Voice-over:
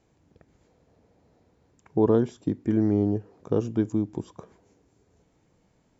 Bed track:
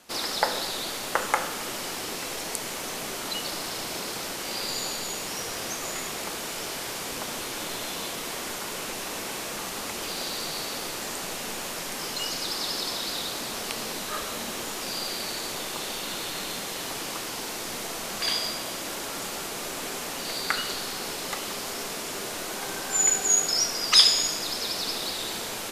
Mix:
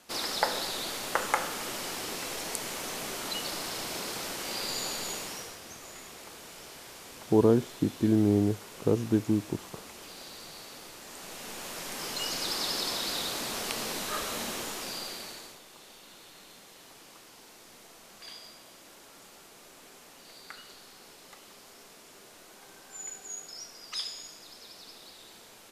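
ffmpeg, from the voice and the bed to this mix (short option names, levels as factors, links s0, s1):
-filter_complex "[0:a]adelay=5350,volume=0.891[s0];[1:a]volume=2.82,afade=t=out:st=5.11:d=0.48:silence=0.298538,afade=t=in:st=11.04:d=1.45:silence=0.251189,afade=t=out:st=14.43:d=1.17:silence=0.133352[s1];[s0][s1]amix=inputs=2:normalize=0"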